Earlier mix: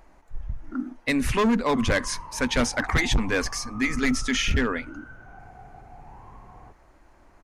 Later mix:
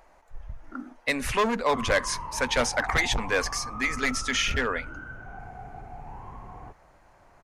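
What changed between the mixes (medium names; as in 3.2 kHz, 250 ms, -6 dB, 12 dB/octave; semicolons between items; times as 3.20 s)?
speech: add resonant low shelf 400 Hz -7 dB, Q 1.5; background +4.5 dB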